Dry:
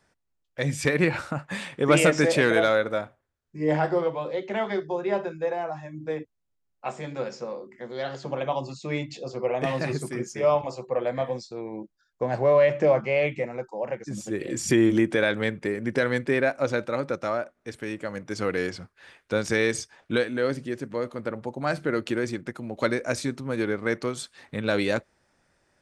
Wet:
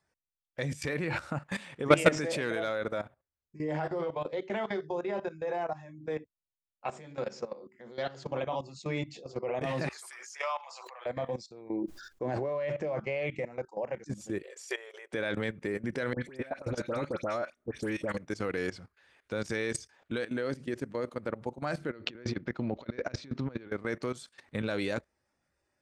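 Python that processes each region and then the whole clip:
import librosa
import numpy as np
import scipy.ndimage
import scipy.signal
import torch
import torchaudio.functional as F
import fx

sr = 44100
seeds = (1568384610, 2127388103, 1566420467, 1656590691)

y = fx.chain(x, sr, fx.highpass(hz=920.0, slope=24),
    fx.pre_swell(db_per_s=37.0), at=(9.89, 11.06))
y = fx.chain(y, sr, fx.peak_eq(hz=340.0, db=9.5, octaves=0.55),
    fx.sustainer(db_per_s=73.0), at=(11.69, 12.49))
y = fx.chain(y, sr, fx.brickwall_highpass(low_hz=380.0),
    fx.high_shelf(hz=5300.0, db=-4.5),
    fx.upward_expand(threshold_db=-43.0, expansion=1.5), at=(14.42, 15.13))
y = fx.chain(y, sr, fx.over_compress(threshold_db=-28.0, ratio=-0.5),
    fx.dispersion(late='highs', ms=91.0, hz=1700.0), at=(16.13, 18.17))
y = fx.chain(y, sr, fx.lowpass(hz=4900.0, slope=24),
    fx.over_compress(threshold_db=-32.0, ratio=-0.5), at=(21.9, 23.72))
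y = fx.noise_reduce_blind(y, sr, reduce_db=8)
y = fx.peak_eq(y, sr, hz=64.0, db=6.0, octaves=0.57)
y = fx.level_steps(y, sr, step_db=16)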